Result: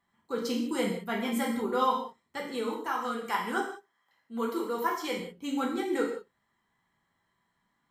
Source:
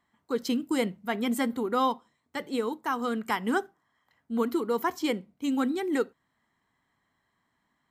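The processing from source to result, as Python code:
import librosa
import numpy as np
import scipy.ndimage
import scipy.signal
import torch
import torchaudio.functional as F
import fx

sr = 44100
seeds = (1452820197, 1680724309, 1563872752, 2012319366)

y = fx.peak_eq(x, sr, hz=77.0, db=-14.5, octaves=2.7, at=(2.87, 5.19))
y = fx.rev_gated(y, sr, seeds[0], gate_ms=220, shape='falling', drr_db=-2.5)
y = y * 10.0 ** (-5.0 / 20.0)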